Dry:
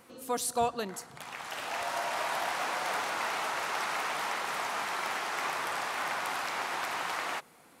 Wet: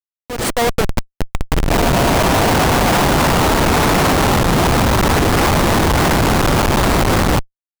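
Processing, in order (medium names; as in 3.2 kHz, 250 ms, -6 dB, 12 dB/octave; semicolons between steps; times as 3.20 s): Schmitt trigger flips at -30 dBFS; level rider gain up to 14 dB; trim +7 dB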